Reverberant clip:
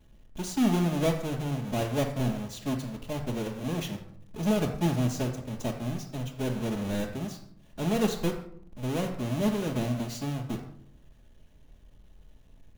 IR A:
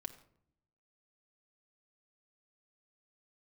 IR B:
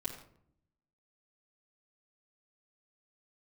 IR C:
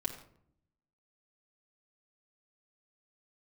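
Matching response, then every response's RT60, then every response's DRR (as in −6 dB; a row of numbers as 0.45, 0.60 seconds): B; 0.65, 0.65, 0.65 seconds; 5.0, −7.0, −1.5 decibels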